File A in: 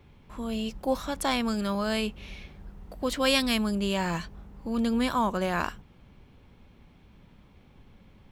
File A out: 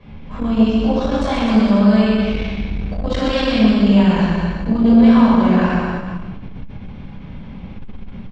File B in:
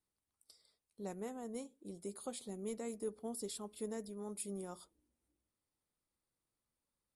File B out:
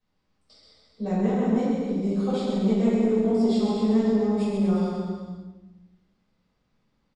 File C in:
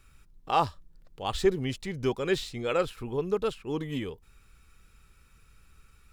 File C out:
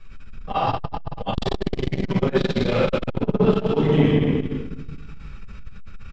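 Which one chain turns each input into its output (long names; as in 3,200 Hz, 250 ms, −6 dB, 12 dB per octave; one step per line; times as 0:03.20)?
Bessel low-pass filter 4,000 Hz, order 8
parametric band 190 Hz +6.5 dB 0.71 octaves
hum removal 97.26 Hz, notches 2
in parallel at +1.5 dB: downward compressor 6 to 1, threshold −35 dBFS
on the sum: brickwall limiter −19 dBFS
on a send: bouncing-ball delay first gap 130 ms, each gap 0.9×, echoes 5
on the sum: rectangular room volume 440 cubic metres, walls mixed, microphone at 5.6 metres
saturating transformer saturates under 240 Hz
level −3 dB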